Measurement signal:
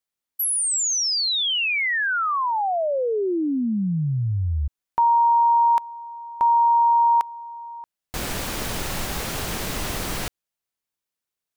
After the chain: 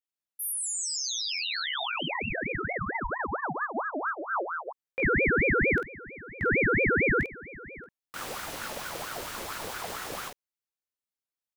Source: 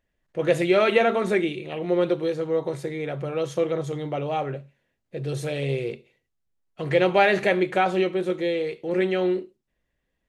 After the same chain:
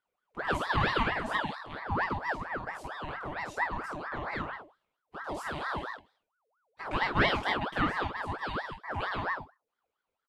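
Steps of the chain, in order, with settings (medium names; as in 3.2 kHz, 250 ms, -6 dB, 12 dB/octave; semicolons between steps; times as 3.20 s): on a send: early reflections 20 ms -4.5 dB, 48 ms -5 dB; on the sum: ring modulator with a swept carrier 960 Hz, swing 55%, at 4.4 Hz; trim -8.5 dB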